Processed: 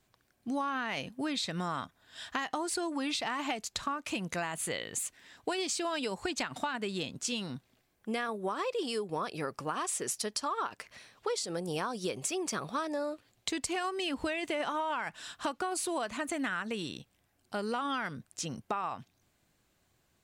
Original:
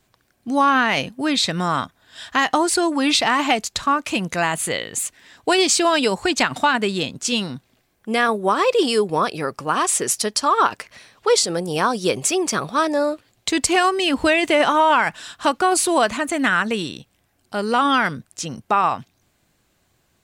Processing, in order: compression, threshold -23 dBFS, peak gain reduction 11 dB; trim -8 dB

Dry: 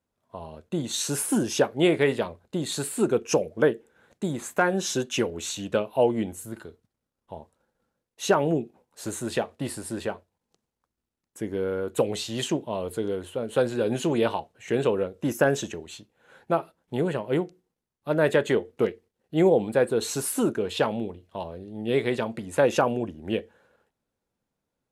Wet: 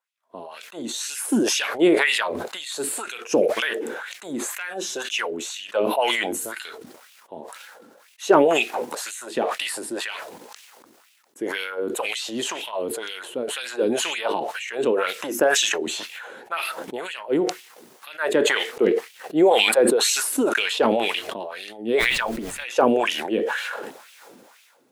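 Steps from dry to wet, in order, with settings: LFO high-pass sine 2 Hz 260–2700 Hz; 21.98–22.62 s: added noise pink -52 dBFS; decay stretcher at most 28 dB/s; trim -2 dB

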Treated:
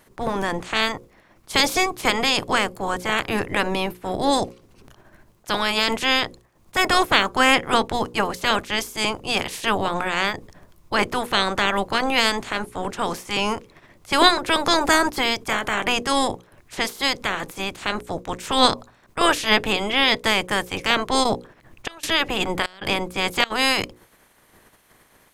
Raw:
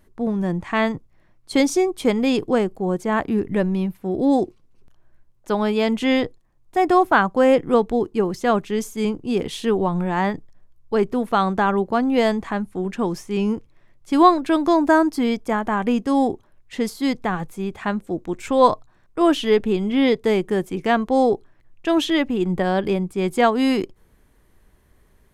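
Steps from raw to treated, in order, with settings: spectral peaks clipped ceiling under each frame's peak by 27 dB; hum notches 60/120/180/240/300/360/420/480/540 Hz; 21.23–23.50 s: trance gate ".xxxx.xxxx" 96 bpm -24 dB; trim -1 dB

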